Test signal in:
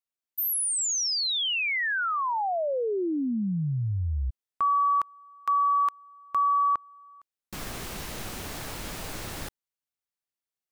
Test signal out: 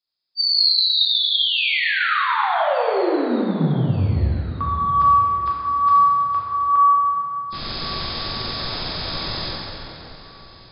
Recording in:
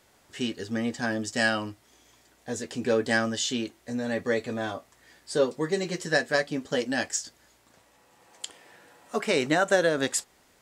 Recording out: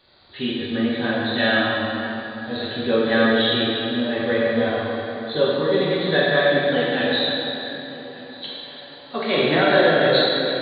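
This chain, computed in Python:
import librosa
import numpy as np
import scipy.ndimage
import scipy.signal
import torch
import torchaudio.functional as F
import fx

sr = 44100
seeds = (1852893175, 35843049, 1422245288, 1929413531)

p1 = fx.freq_compress(x, sr, knee_hz=3200.0, ratio=4.0)
p2 = p1 + fx.echo_feedback(p1, sr, ms=1180, feedback_pct=39, wet_db=-20.5, dry=0)
y = fx.rev_plate(p2, sr, seeds[0], rt60_s=3.4, hf_ratio=0.7, predelay_ms=0, drr_db=-7.0)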